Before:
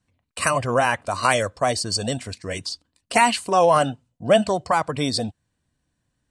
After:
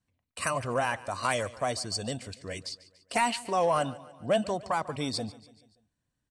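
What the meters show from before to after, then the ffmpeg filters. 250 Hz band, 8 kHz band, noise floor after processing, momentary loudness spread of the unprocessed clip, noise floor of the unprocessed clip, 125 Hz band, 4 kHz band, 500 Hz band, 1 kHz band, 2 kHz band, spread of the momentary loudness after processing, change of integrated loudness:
−8.5 dB, −9.0 dB, −83 dBFS, 13 LU, −76 dBFS, −8.5 dB, −8.5 dB, −9.0 dB, −9.0 dB, −9.5 dB, 12 LU, −9.0 dB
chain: -filter_complex "[0:a]asoftclip=type=tanh:threshold=-6dB,asplit=2[link_01][link_02];[link_02]aecho=0:1:144|288|432|576:0.112|0.0595|0.0315|0.0167[link_03];[link_01][link_03]amix=inputs=2:normalize=0,volume=-8.5dB"

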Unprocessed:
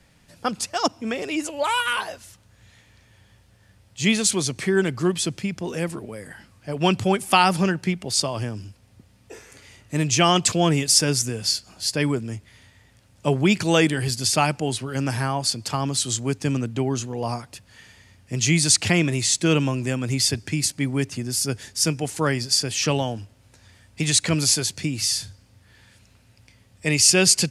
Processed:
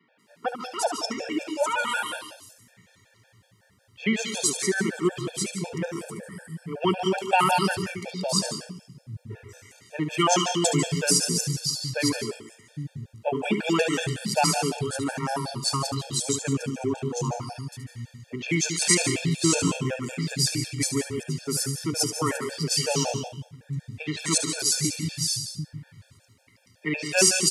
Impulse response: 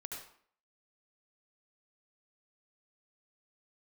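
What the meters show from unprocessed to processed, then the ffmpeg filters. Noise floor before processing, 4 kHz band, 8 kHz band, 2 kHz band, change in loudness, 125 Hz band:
−57 dBFS, −4.5 dB, −3.0 dB, −3.0 dB, −4.0 dB, −5.0 dB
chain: -filter_complex "[0:a]highpass=frequency=110:width=0.5412,highpass=frequency=110:width=1.3066,acrossover=split=180|3200[link_01][link_02][link_03];[link_03]adelay=190[link_04];[link_01]adelay=740[link_05];[link_05][link_02][link_04]amix=inputs=3:normalize=0,asplit=2[link_06][link_07];[1:a]atrim=start_sample=2205,adelay=72[link_08];[link_07][link_08]afir=irnorm=-1:irlink=0,volume=-3dB[link_09];[link_06][link_09]amix=inputs=2:normalize=0,afftfilt=real='re*gt(sin(2*PI*5.4*pts/sr)*(1-2*mod(floor(b*sr/1024/460),2)),0)':imag='im*gt(sin(2*PI*5.4*pts/sr)*(1-2*mod(floor(b*sr/1024/460),2)),0)':win_size=1024:overlap=0.75"

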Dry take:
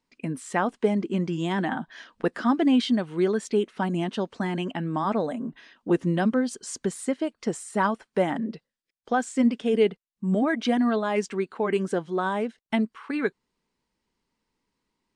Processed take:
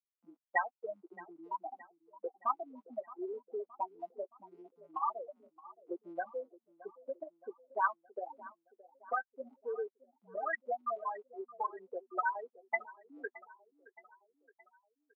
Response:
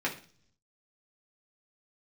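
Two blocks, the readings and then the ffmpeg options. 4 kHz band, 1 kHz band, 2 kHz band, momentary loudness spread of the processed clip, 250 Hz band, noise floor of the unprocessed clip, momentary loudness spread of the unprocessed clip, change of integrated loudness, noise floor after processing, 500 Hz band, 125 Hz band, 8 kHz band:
below −40 dB, −7.0 dB, −7.5 dB, 18 LU, −29.5 dB, −83 dBFS, 8 LU, −13.5 dB, below −85 dBFS, −15.0 dB, below −40 dB, below −40 dB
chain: -filter_complex "[0:a]lowpass=frequency=2500:width=0.5412,lowpass=frequency=2500:width=1.3066,afftfilt=real='re*gte(hypot(re,im),0.282)':imag='im*gte(hypot(re,im),0.282)':win_size=1024:overlap=0.75,highpass=frequency=800:width=0.5412,highpass=frequency=800:width=1.3066,bandreject=frequency=1700:width=5.4,acrossover=split=1600[link_01][link_02];[link_01]acompressor=threshold=-46dB:ratio=6[link_03];[link_03][link_02]amix=inputs=2:normalize=0,flanger=delay=5.6:depth=2.3:regen=-27:speed=0.18:shape=sinusoidal,aecho=1:1:620|1240|1860|2480:0.106|0.0561|0.0298|0.0158,volume=13dB"

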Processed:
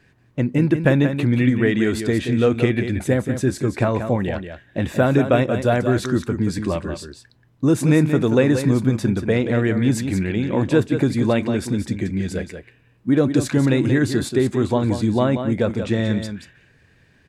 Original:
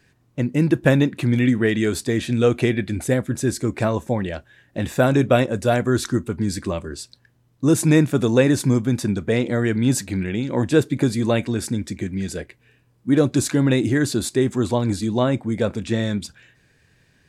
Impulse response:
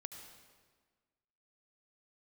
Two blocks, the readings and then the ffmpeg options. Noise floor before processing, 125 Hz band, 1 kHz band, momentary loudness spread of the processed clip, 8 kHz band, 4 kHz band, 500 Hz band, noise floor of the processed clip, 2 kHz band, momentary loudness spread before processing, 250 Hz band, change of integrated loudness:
−61 dBFS, +1.5 dB, +1.0 dB, 9 LU, −5.5 dB, −2.0 dB, +1.0 dB, −57 dBFS, +0.5 dB, 11 LU, +1.0 dB, +1.0 dB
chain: -af "bass=frequency=250:gain=0,treble=frequency=4000:gain=-8,acompressor=threshold=-21dB:ratio=1.5,aecho=1:1:181:0.376,volume=3dB"

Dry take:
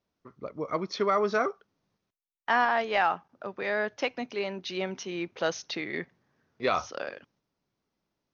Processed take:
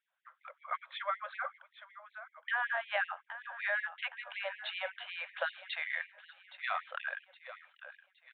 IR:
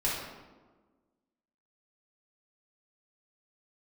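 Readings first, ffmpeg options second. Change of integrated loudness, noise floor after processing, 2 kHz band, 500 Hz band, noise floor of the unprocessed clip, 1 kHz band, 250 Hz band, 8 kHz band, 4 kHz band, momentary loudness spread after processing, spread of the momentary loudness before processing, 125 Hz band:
−7.5 dB, −77 dBFS, −2.5 dB, −14.5 dB, −84 dBFS, −10.5 dB, below −40 dB, can't be measured, −5.5 dB, 19 LU, 14 LU, below −40 dB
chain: -af "equalizer=frequency=1600:width=5:gain=11,acompressor=threshold=-29dB:ratio=6,aecho=1:1:817|1634|2451|3268:0.2|0.0858|0.0369|0.0159,aresample=8000,aresample=44100,afftfilt=real='re*gte(b*sr/1024,480*pow(1900/480,0.5+0.5*sin(2*PI*5.3*pts/sr)))':imag='im*gte(b*sr/1024,480*pow(1900/480,0.5+0.5*sin(2*PI*5.3*pts/sr)))':win_size=1024:overlap=0.75"

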